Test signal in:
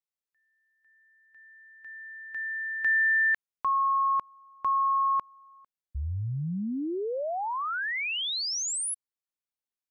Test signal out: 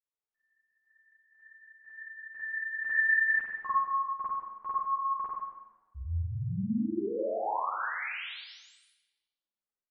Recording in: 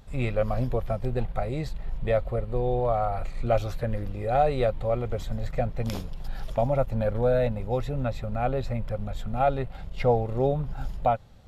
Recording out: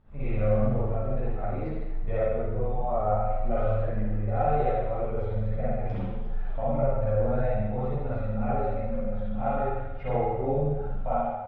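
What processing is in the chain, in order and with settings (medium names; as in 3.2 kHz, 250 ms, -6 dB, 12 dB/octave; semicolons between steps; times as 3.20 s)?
low-pass 1.9 kHz 12 dB/octave; feedback delay 85 ms, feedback 47%, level -8 dB; spring tank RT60 1.1 s, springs 47 ms, chirp 25 ms, DRR -8.5 dB; three-phase chorus; trim -8 dB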